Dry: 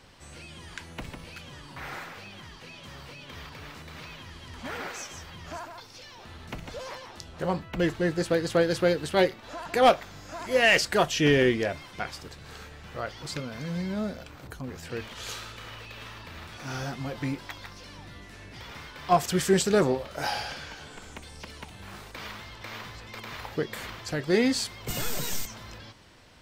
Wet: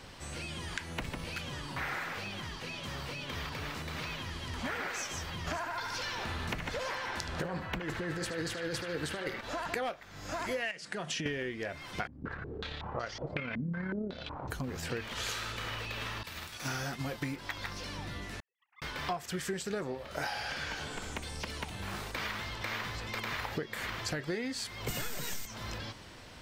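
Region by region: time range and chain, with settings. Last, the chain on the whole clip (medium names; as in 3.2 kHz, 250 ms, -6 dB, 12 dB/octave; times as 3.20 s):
5.47–9.41 s: compressor with a negative ratio -31 dBFS + band-passed feedback delay 74 ms, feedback 78%, band-pass 1.5 kHz, level -5 dB
10.71–11.26 s: resonant low shelf 110 Hz -13.5 dB, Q 3 + compression 10:1, threshold -28 dBFS + careless resampling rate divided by 2×, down none, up filtered
12.07–14.49 s: AM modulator 34 Hz, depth 25% + step-sequenced low-pass 5.4 Hz 240–5900 Hz
16.23–17.36 s: expander -36 dBFS + treble shelf 6.1 kHz +10.5 dB + tape noise reduction on one side only encoder only
18.40–18.82 s: formants replaced by sine waves + gate -38 dBFS, range -51 dB
whole clip: dynamic bell 1.8 kHz, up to +5 dB, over -45 dBFS, Q 1.4; compression 16:1, threshold -37 dBFS; trim +4.5 dB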